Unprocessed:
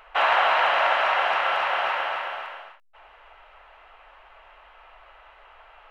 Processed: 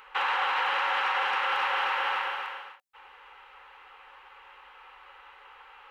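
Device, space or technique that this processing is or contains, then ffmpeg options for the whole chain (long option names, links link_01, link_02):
PA system with an anti-feedback notch: -af "highpass=frequency=160:poles=1,asuperstop=centerf=650:order=12:qfactor=3.7,alimiter=limit=-19.5dB:level=0:latency=1:release=38,highshelf=frequency=4700:gain=4.5"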